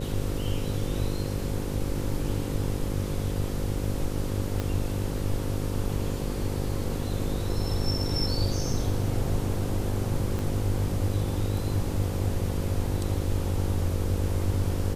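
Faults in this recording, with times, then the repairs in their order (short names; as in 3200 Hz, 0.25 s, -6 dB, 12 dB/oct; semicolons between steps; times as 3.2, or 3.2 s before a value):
buzz 50 Hz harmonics 11 -32 dBFS
4.6 pop -16 dBFS
10.39 pop -19 dBFS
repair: de-click; de-hum 50 Hz, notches 11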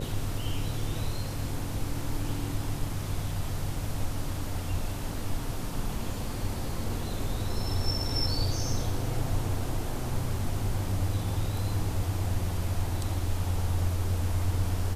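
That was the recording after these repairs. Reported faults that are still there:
4.6 pop
10.39 pop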